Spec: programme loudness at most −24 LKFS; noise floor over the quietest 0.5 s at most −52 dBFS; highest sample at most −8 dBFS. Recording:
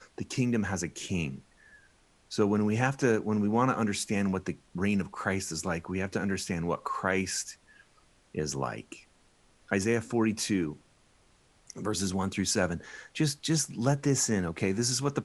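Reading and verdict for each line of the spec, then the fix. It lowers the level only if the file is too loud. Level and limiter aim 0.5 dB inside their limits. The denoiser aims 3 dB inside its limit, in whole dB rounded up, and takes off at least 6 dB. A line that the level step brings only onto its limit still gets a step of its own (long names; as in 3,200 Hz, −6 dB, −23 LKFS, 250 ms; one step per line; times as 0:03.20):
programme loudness −30.0 LKFS: in spec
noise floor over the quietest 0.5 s −64 dBFS: in spec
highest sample −10.5 dBFS: in spec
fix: no processing needed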